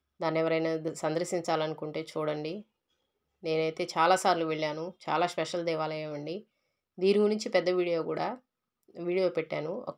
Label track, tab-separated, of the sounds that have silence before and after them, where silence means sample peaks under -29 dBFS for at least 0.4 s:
3.460000	6.360000	sound
7.020000	8.330000	sound